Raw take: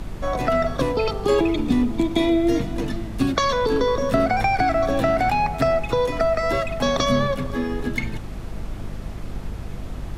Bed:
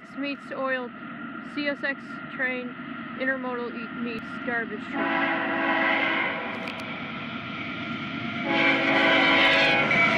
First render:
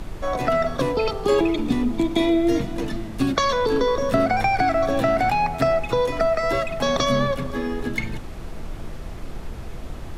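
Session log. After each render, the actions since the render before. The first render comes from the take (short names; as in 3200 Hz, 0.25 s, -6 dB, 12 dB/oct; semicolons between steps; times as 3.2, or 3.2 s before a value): notches 50/100/150/200/250/300 Hz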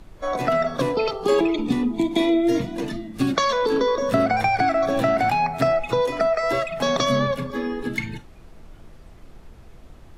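noise print and reduce 12 dB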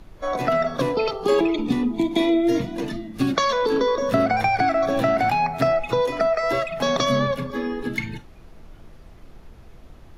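bell 8100 Hz -6.5 dB 0.27 oct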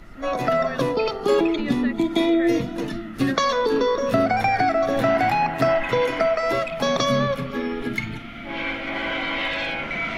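add bed -6.5 dB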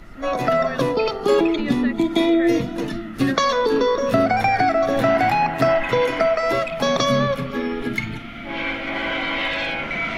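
gain +2 dB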